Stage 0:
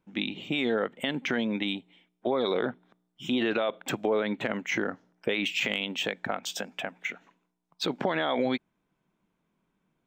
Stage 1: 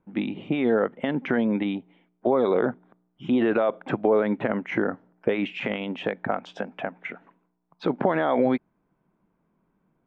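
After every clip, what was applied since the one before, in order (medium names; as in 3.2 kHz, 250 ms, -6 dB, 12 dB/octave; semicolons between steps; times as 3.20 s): low-pass 1.4 kHz 12 dB/octave; trim +6 dB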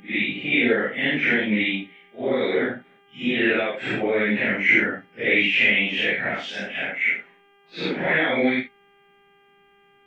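phase randomisation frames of 200 ms; resonant high shelf 1.5 kHz +10.5 dB, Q 3; mains buzz 400 Hz, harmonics 8, -58 dBFS -3 dB/octave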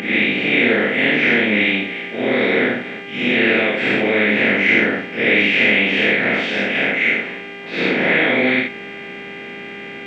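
spectral levelling over time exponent 0.4; trim -1 dB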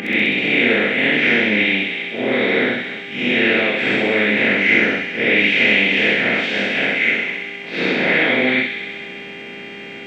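feedback echo behind a high-pass 65 ms, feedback 78%, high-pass 2.8 kHz, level -3 dB; trim -1 dB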